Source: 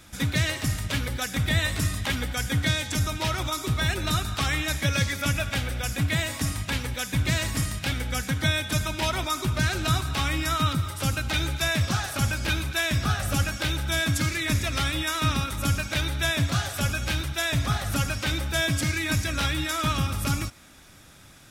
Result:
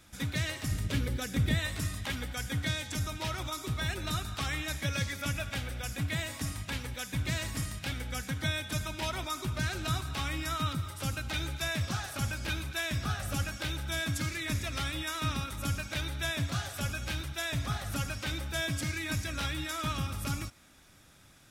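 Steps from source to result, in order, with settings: 0.71–1.55 resonant low shelf 560 Hz +6 dB, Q 1.5; gain -8 dB

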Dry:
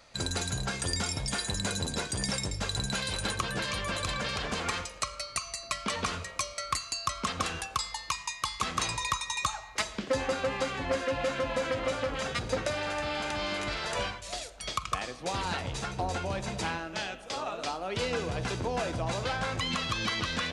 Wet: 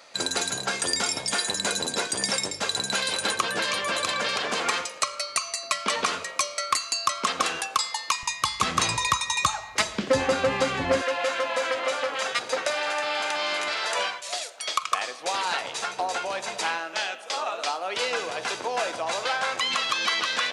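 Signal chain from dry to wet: HPF 330 Hz 12 dB/oct, from 8.23 s 89 Hz, from 11.02 s 590 Hz; gain +7 dB

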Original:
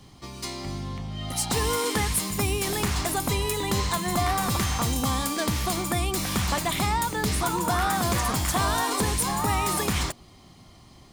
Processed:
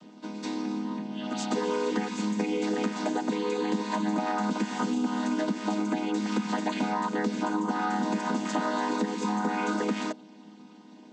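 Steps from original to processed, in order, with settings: chord vocoder minor triad, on G#3; compressor, threshold -28 dBFS, peak gain reduction 9 dB; gain +3.5 dB

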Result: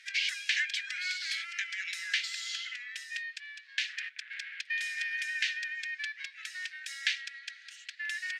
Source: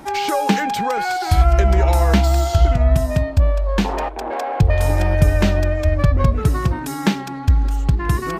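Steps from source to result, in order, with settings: steep high-pass 1700 Hz 72 dB/oct; air absorption 110 m

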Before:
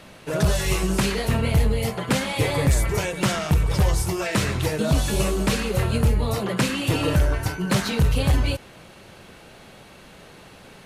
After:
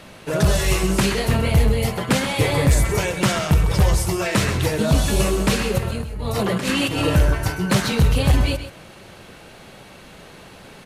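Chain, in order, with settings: 5.78–7.02 negative-ratio compressor -27 dBFS, ratio -1; echo 0.13 s -11.5 dB; gain +3 dB

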